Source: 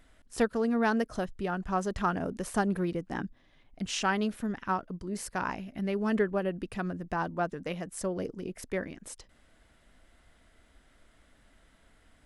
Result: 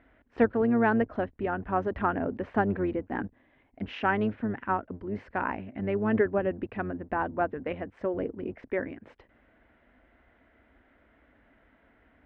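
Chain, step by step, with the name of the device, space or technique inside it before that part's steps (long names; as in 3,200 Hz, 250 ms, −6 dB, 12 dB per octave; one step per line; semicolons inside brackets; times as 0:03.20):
sub-octave bass pedal (sub-octave generator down 1 octave, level −6 dB; loudspeaker in its box 66–2,300 Hz, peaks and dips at 82 Hz −5 dB, 120 Hz −7 dB, 170 Hz −10 dB, 260 Hz +3 dB, 1,200 Hz −4 dB)
level +3.5 dB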